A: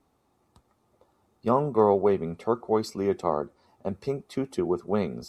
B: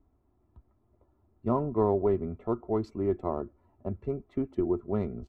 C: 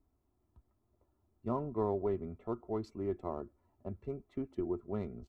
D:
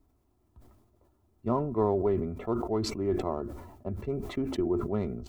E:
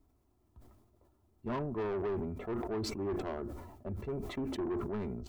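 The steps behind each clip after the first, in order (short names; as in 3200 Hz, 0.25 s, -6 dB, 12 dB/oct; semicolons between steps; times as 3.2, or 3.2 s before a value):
Wiener smoothing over 9 samples; RIAA curve playback; comb 3 ms, depth 49%; gain -8.5 dB
high shelf 2900 Hz +7.5 dB; gain -8 dB
sustainer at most 54 dB/s; gain +6.5 dB
soft clip -29 dBFS, distortion -8 dB; gain -2 dB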